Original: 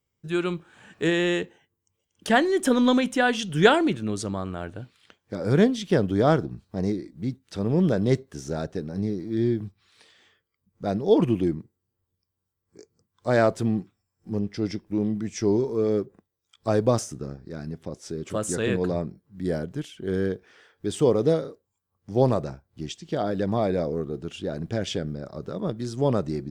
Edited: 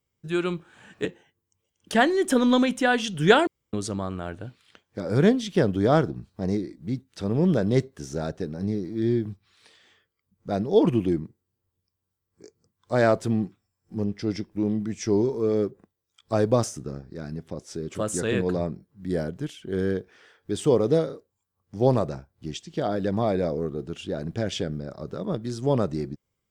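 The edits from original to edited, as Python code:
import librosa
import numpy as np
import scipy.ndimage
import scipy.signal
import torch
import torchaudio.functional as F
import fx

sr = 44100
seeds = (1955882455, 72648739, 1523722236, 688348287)

y = fx.edit(x, sr, fx.cut(start_s=1.05, length_s=0.35),
    fx.room_tone_fill(start_s=3.82, length_s=0.26), tone=tone)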